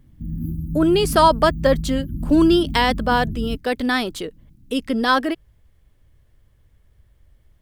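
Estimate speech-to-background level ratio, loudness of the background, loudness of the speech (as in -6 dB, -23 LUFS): 9.5 dB, -29.0 LUFS, -19.5 LUFS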